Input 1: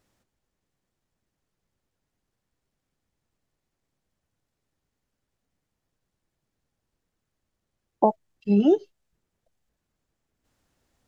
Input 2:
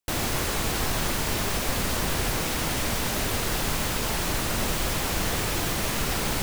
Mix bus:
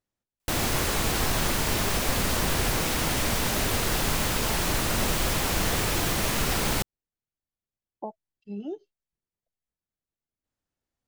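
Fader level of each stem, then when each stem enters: −16.5, +1.0 decibels; 0.00, 0.40 seconds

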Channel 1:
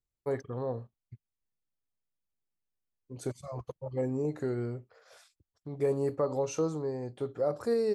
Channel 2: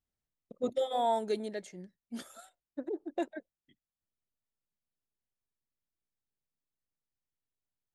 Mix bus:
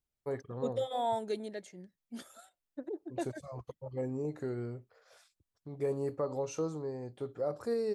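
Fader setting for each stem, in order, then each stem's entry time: −4.5, −3.0 decibels; 0.00, 0.00 seconds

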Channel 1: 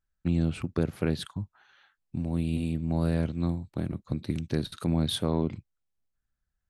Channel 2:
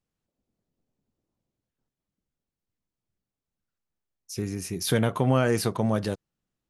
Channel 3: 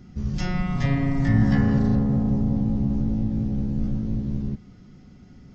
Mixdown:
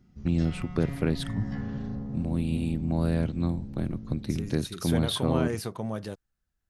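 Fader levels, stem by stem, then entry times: +0.5, −8.0, −14.0 decibels; 0.00, 0.00, 0.00 seconds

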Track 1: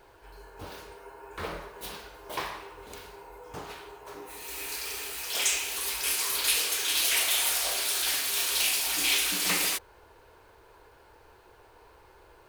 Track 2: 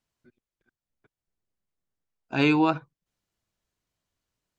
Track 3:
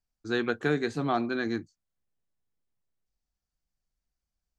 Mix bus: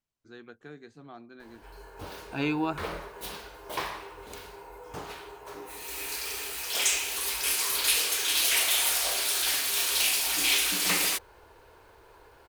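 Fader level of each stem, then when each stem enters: +1.0, −7.5, −19.5 decibels; 1.40, 0.00, 0.00 seconds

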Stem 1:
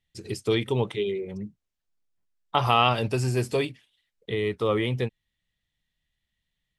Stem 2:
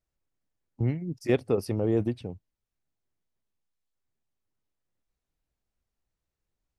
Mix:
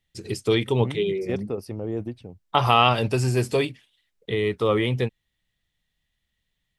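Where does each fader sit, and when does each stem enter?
+3.0, −4.0 decibels; 0.00, 0.00 seconds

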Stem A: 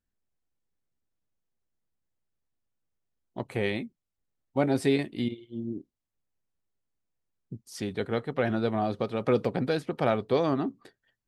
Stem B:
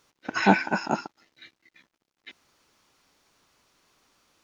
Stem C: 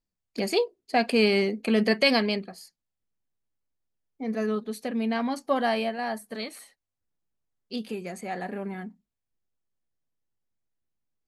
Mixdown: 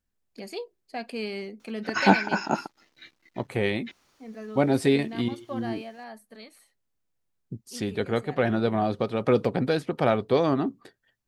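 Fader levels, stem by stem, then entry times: +3.0, +0.5, −11.5 decibels; 0.00, 1.60, 0.00 seconds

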